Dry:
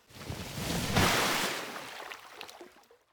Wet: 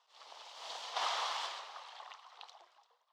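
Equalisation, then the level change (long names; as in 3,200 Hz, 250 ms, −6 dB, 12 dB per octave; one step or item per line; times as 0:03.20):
high-pass filter 780 Hz 24 dB per octave
high-frequency loss of the air 150 metres
flat-topped bell 1,900 Hz −10 dB 1.1 octaves
−2.0 dB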